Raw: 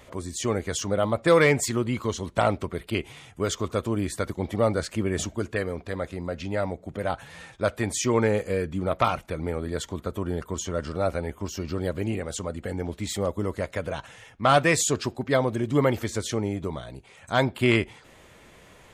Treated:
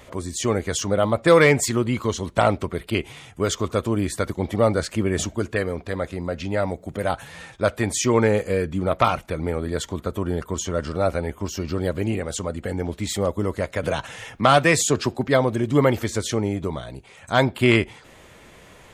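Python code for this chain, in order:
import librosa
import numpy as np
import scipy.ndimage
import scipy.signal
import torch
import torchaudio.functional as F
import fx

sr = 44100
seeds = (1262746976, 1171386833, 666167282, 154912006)

y = fx.high_shelf(x, sr, hz=fx.line((6.67, 5800.0), (7.29, 8700.0)), db=8.5, at=(6.67, 7.29), fade=0.02)
y = fx.band_squash(y, sr, depth_pct=40, at=(13.83, 15.28))
y = y * librosa.db_to_amplitude(4.0)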